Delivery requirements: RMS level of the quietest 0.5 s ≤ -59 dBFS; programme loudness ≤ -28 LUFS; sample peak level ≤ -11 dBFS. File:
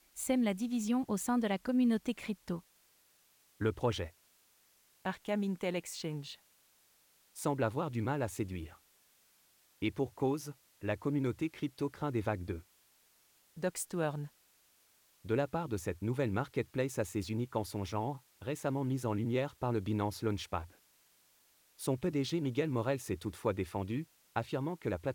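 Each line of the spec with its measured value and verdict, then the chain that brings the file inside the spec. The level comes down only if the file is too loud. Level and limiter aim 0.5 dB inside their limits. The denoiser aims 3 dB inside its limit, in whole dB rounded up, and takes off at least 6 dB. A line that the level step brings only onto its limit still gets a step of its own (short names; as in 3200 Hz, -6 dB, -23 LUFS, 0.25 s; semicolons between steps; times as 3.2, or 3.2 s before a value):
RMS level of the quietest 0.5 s -69 dBFS: OK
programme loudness -36.0 LUFS: OK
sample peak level -18.5 dBFS: OK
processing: none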